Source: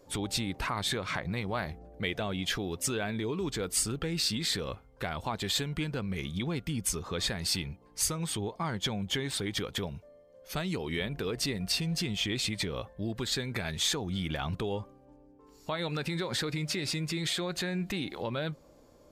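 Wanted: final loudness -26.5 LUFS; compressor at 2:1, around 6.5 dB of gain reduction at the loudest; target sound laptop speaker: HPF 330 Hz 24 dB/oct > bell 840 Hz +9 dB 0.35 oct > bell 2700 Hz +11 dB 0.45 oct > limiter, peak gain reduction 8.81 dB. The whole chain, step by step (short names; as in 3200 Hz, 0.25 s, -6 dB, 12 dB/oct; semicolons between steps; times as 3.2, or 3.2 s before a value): compressor 2:1, threshold -38 dBFS; HPF 330 Hz 24 dB/oct; bell 840 Hz +9 dB 0.35 oct; bell 2700 Hz +11 dB 0.45 oct; gain +12 dB; limiter -15 dBFS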